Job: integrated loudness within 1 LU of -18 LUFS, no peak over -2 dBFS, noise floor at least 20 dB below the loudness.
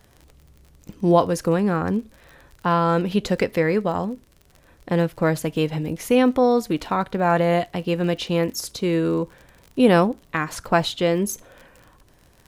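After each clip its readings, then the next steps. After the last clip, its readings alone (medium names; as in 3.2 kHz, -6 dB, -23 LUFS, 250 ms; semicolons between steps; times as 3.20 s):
tick rate 37 per s; loudness -21.5 LUFS; peak level -3.0 dBFS; loudness target -18.0 LUFS
-> de-click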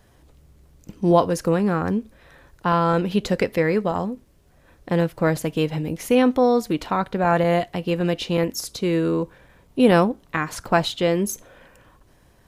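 tick rate 0.080 per s; loudness -21.5 LUFS; peak level -3.0 dBFS; loudness target -18.0 LUFS
-> trim +3.5 dB; peak limiter -2 dBFS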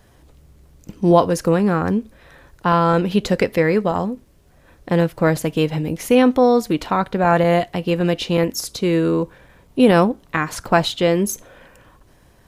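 loudness -18.5 LUFS; peak level -2.0 dBFS; noise floor -52 dBFS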